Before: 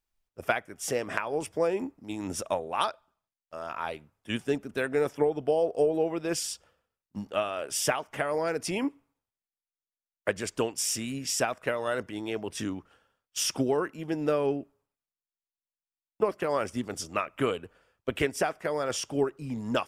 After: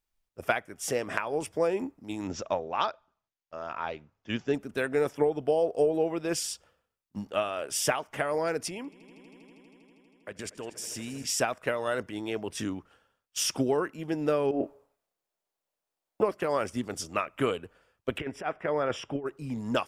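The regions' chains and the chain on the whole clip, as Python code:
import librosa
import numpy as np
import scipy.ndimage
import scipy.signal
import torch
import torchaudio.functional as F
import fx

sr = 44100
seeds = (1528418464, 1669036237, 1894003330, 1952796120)

y = fx.chain(x, sr, fx.high_shelf(hz=5900.0, db=-9.5),
    fx.resample_bad(factor=3, down='none', up='filtered'), at=(2.27, 4.54))
y = fx.chain(y, sr, fx.level_steps(step_db=19),
    fx.echo_swell(ms=80, loudest=5, wet_db=-18), at=(8.68, 11.24))
y = fx.chain(y, sr, fx.peak_eq(hz=590.0, db=14.0, octaves=1.8),
    fx.over_compress(threshold_db=-29.0, ratio=-1.0),
    fx.doubler(ms=31.0, db=-7.0), at=(14.51, 16.22))
y = fx.chain(y, sr, fx.over_compress(threshold_db=-29.0, ratio=-0.5),
    fx.savgol(points=25), at=(18.18, 19.26))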